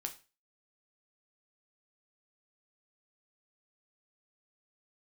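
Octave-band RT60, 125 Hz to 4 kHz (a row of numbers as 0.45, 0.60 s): 0.35, 0.35, 0.30, 0.30, 0.35, 0.30 s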